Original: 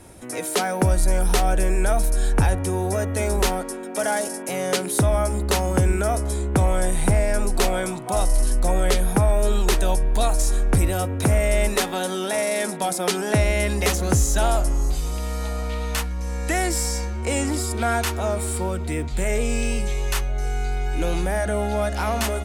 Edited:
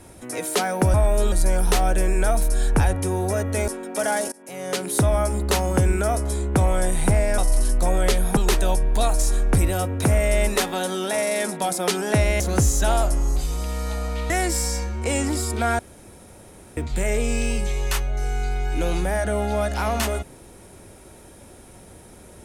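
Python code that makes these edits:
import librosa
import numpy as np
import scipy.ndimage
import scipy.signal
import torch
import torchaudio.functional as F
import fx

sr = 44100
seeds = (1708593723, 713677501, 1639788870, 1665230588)

y = fx.edit(x, sr, fx.cut(start_s=3.3, length_s=0.38),
    fx.fade_in_from(start_s=4.32, length_s=0.66, floor_db=-23.5),
    fx.cut(start_s=7.38, length_s=0.82),
    fx.move(start_s=9.19, length_s=0.38, to_s=0.94),
    fx.cut(start_s=13.6, length_s=0.34),
    fx.cut(start_s=15.84, length_s=0.67),
    fx.room_tone_fill(start_s=18.0, length_s=0.98), tone=tone)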